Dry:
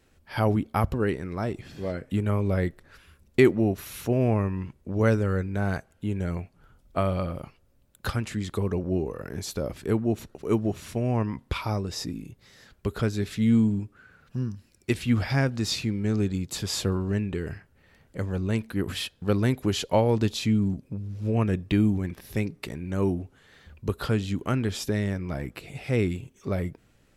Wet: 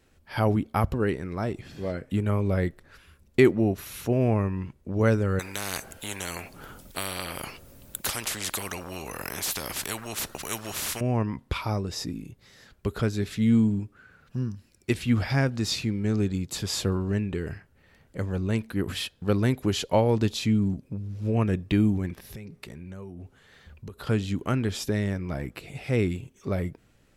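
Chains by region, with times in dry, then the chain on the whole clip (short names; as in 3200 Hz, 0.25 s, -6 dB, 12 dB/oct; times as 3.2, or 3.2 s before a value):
5.39–11.01 high shelf 7600 Hz +9 dB + spectral compressor 4:1
22.19–24.07 notch 300 Hz, Q 6.5 + compressor 12:1, threshold -36 dBFS
whole clip: dry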